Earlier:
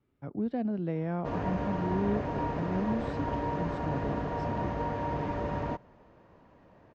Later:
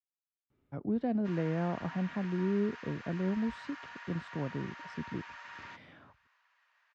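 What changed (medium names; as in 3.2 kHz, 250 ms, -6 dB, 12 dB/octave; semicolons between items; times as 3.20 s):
speech: entry +0.50 s; background: add high-pass 1.4 kHz 24 dB/octave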